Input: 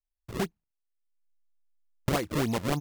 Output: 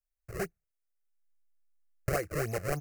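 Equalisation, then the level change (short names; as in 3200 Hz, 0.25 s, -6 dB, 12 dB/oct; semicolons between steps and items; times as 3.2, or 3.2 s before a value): fixed phaser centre 940 Hz, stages 6; 0.0 dB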